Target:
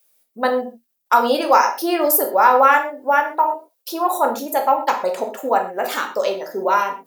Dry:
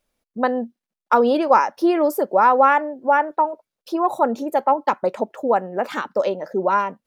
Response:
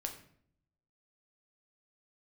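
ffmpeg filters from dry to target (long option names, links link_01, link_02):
-filter_complex "[0:a]aemphasis=mode=production:type=riaa[link_01];[1:a]atrim=start_sample=2205,afade=type=out:start_time=0.17:duration=0.01,atrim=end_sample=7938,asetrate=38367,aresample=44100[link_02];[link_01][link_02]afir=irnorm=-1:irlink=0,volume=2dB"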